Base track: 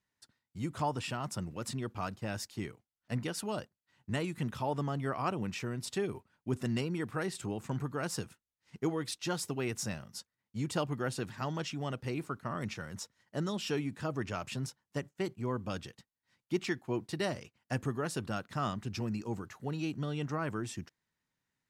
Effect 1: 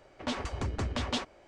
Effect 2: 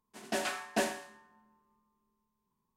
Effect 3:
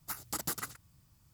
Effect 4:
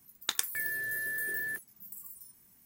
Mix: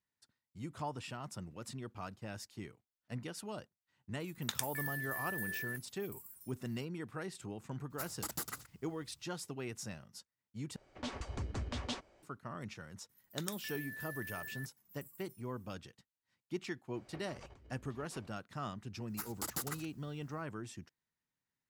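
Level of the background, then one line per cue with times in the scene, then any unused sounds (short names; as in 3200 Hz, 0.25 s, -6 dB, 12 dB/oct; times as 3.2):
base track -7.5 dB
4.2 add 4 -6.5 dB
7.9 add 3 -4.5 dB
10.76 replace with 1 -9 dB + tone controls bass +3 dB, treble +3 dB
13.09 add 4 -12 dB
16.94 add 1 -14.5 dB + negative-ratio compressor -43 dBFS
19.09 add 3 -3.5 dB
not used: 2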